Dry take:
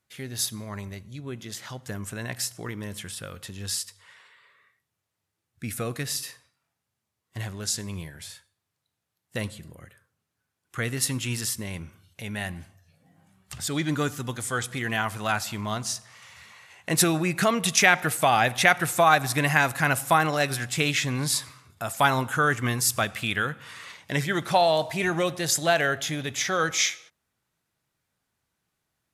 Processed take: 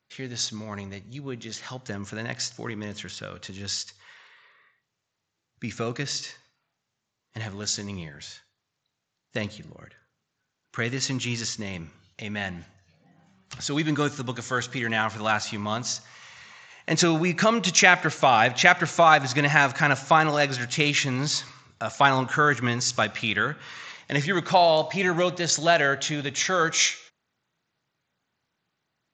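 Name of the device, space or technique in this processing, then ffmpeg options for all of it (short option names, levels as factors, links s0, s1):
Bluetooth headset: -af "highpass=120,aresample=16000,aresample=44100,volume=1.26" -ar 16000 -c:a sbc -b:a 64k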